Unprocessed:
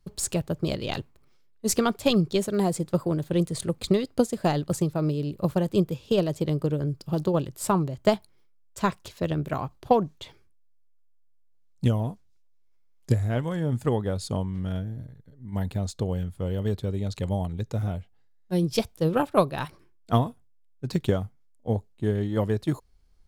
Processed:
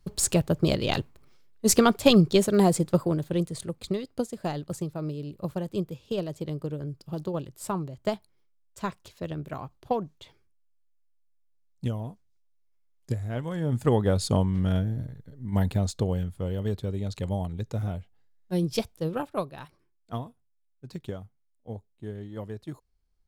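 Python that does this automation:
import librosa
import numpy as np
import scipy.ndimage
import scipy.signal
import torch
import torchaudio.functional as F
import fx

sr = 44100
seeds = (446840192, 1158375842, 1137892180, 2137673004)

y = fx.gain(x, sr, db=fx.line((2.75, 4.0), (3.78, -7.0), (13.22, -7.0), (14.1, 5.0), (15.49, 5.0), (16.55, -2.0), (18.71, -2.0), (19.64, -12.0)))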